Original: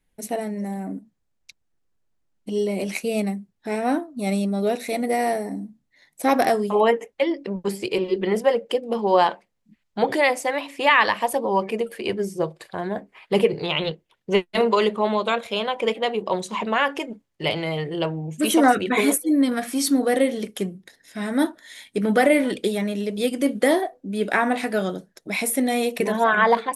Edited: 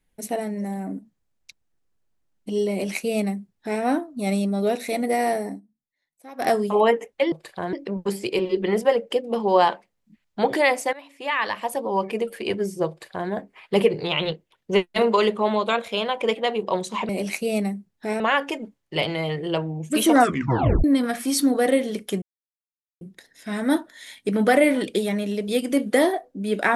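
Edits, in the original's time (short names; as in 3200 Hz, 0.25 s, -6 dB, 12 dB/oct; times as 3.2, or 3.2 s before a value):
2.71–3.82 copy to 16.68
5.49–6.49 dip -23 dB, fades 0.12 s
10.52–11.89 fade in, from -17.5 dB
12.48–12.89 copy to 7.32
18.69 tape stop 0.63 s
20.7 insert silence 0.79 s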